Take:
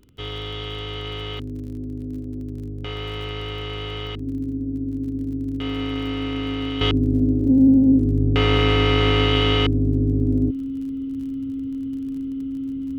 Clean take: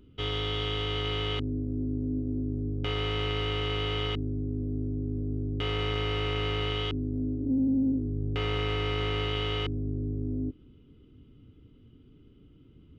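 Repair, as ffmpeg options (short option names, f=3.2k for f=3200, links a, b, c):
-af "adeclick=t=4,bandreject=f=270:w=30,asetnsamples=n=441:p=0,asendcmd='6.81 volume volume -11.5dB',volume=0dB"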